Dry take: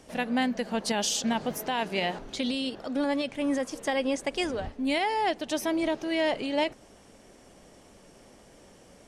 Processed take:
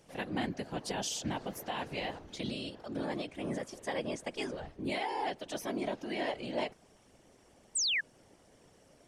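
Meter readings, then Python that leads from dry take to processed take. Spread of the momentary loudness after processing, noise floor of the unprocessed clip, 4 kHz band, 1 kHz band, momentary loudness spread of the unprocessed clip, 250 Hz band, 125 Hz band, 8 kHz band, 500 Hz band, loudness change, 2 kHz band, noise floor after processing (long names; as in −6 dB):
7 LU, −55 dBFS, −5.0 dB, −8.0 dB, 5 LU, −9.5 dB, +0.5 dB, −3.5 dB, −8.0 dB, −7.5 dB, −6.0 dB, −64 dBFS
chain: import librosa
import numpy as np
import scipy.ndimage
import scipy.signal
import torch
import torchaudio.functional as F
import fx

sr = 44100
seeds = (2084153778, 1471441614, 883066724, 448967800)

y = fx.whisperise(x, sr, seeds[0])
y = fx.spec_paint(y, sr, seeds[1], shape='fall', start_s=7.75, length_s=0.26, low_hz=1600.0, high_hz=9000.0, level_db=-22.0)
y = y * librosa.db_to_amplitude(-8.5)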